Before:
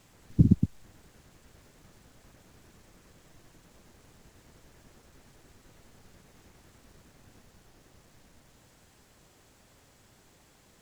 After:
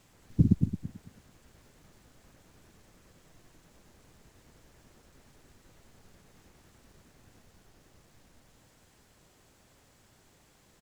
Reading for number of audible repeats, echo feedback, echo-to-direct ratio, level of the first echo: 2, 24%, -11.5 dB, -12.0 dB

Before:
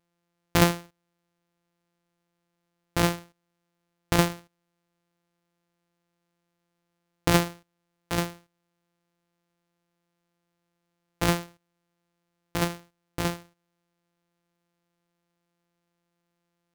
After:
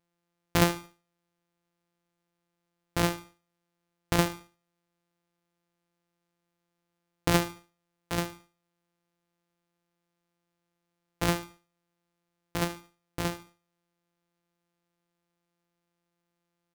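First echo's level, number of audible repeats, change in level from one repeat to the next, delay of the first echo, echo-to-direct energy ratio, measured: -17.5 dB, 2, -9.0 dB, 73 ms, -17.0 dB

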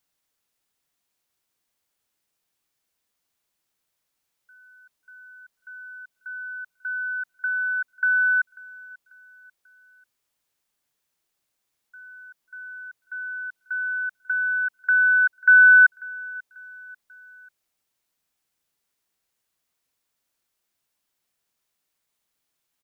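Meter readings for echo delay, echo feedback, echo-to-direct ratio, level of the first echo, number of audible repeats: 0.541 s, 43%, -20.5 dB, -21.5 dB, 2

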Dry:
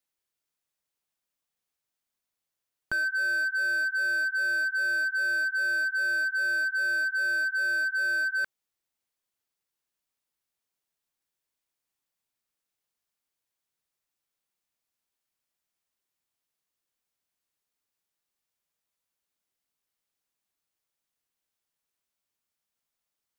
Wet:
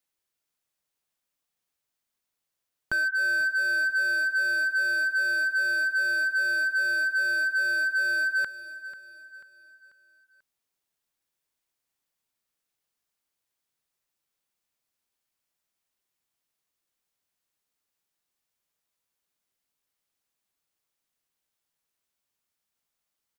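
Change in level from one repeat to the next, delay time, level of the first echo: -7.5 dB, 0.49 s, -15.0 dB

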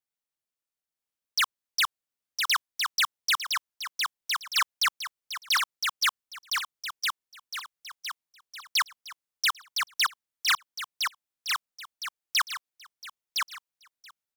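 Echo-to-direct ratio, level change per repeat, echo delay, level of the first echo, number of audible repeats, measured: -3.0 dB, -7.5 dB, 1.011 s, -4.0 dB, 5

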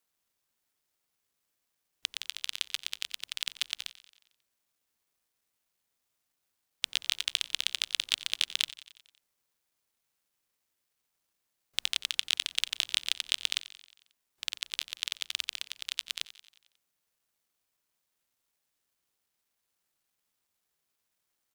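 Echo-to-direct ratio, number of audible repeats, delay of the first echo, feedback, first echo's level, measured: -15.0 dB, 4, 90 ms, 59%, -17.0 dB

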